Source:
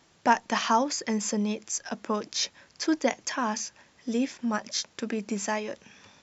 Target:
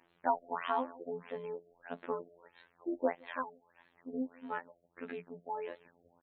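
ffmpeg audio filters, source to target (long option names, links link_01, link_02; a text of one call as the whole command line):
ffmpeg -i in.wav -filter_complex "[0:a]bass=frequency=250:gain=-10,treble=frequency=4000:gain=-8,asettb=1/sr,asplit=3[link_01][link_02][link_03];[link_01]atrim=end=3.424[link_04];[link_02]atrim=start=3.42:end=4.15,asetpts=PTS-STARTPTS,afade=type=in:duration=0.004:curve=qsin,afade=type=out:start_time=0.726:duration=0.004:curve=qsin,acompressor=threshold=-39dB:ratio=3[link_05];[link_03]atrim=start=4.146[link_06];[link_04][link_05]acrossfade=duration=0.004:curve1=hsin:curve2=qsin[link_07];[link_07][link_06]acrossfade=duration=0.004:curve1=qsin:curve2=hsin,aecho=1:1:167:0.075,aphaser=in_gain=1:out_gain=1:delay=2.3:decay=0.32:speed=0.99:type=sinusoidal,asettb=1/sr,asplit=3[link_08][link_09][link_10];[link_08]atrim=end=4.714[link_11];[link_09]atrim=start=4.71:end=5.58,asetpts=PTS-STARTPTS,afade=type=in:duration=0.004:curve=qsin,afade=type=out:start_time=0.866:duration=0.004:curve=qsin,equalizer=frequency=530:width=0.54:gain=-4[link_12];[link_10]atrim=start=5.576[link_13];[link_11][link_12]acrossfade=duration=0.004:curve1=hsin:curve2=qsin[link_14];[link_14][link_13]acrossfade=duration=0.004:curve1=qsin:curve2=hsin,afftfilt=real='hypot(re,im)*cos(PI*b)':imag='0':win_size=2048:overlap=0.75,afftfilt=real='re*lt(b*sr/1024,720*pow(4400/720,0.5+0.5*sin(2*PI*1.6*pts/sr)))':imag='im*lt(b*sr/1024,720*pow(4400/720,0.5+0.5*sin(2*PI*1.6*pts/sr)))':win_size=1024:overlap=0.75,volume=-4dB" out.wav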